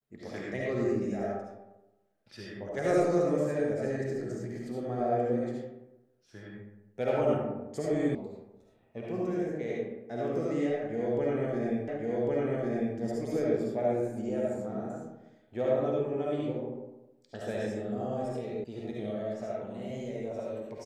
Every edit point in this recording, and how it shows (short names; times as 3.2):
8.15 sound cut off
11.88 repeat of the last 1.1 s
18.64 sound cut off